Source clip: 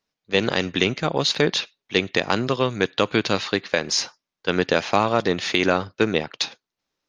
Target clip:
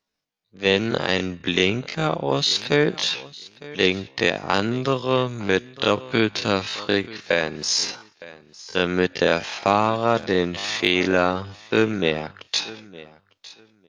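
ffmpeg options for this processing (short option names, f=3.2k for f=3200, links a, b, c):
-af "aecho=1:1:463|926:0.106|0.0191,atempo=0.51"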